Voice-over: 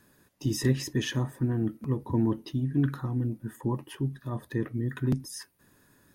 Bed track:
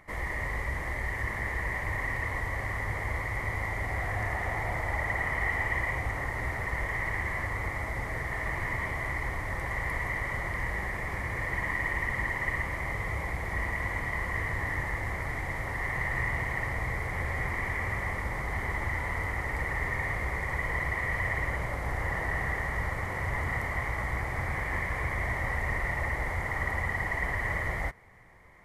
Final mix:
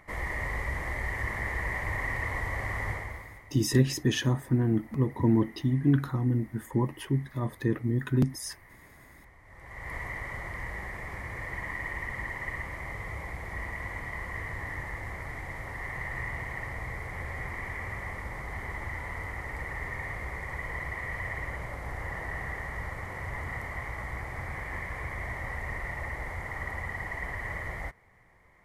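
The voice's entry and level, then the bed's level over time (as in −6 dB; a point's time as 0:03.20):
3.10 s, +2.5 dB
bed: 0:02.90 0 dB
0:03.54 −22.5 dB
0:09.41 −22.5 dB
0:09.94 −5 dB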